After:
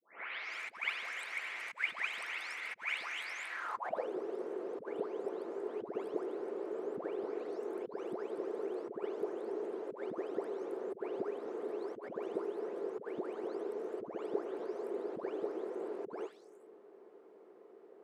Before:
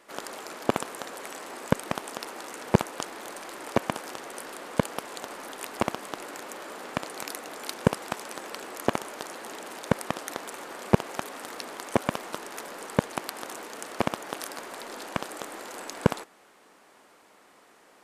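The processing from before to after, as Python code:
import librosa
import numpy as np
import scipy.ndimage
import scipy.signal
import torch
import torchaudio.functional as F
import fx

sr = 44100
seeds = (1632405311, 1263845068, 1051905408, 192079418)

y = fx.spec_delay(x, sr, highs='late', ms=432)
y = fx.over_compress(y, sr, threshold_db=-36.0, ratio=-1.0)
y = fx.filter_sweep_bandpass(y, sr, from_hz=2200.0, to_hz=400.0, start_s=3.48, end_s=4.11, q=5.3)
y = y * 10.0 ** (8.0 / 20.0)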